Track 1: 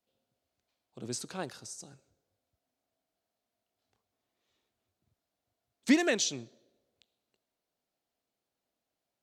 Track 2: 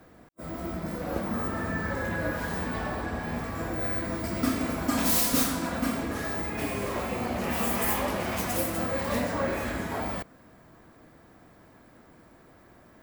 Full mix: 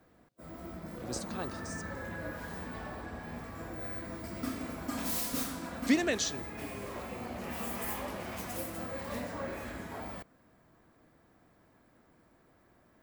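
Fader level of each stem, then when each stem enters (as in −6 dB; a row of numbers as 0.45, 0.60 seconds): −2.5, −10.0 decibels; 0.00, 0.00 seconds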